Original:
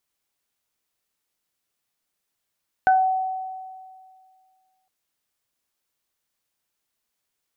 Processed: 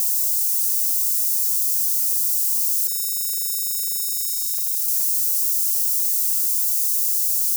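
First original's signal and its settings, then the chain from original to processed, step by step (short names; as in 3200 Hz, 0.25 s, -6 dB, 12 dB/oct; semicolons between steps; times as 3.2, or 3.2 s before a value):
additive tone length 2.01 s, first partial 754 Hz, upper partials -5 dB, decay 2.06 s, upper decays 0.24 s, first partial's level -12.5 dB
switching spikes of -17 dBFS; inverse Chebyshev high-pass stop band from 870 Hz, stop band 80 dB; fast leveller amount 70%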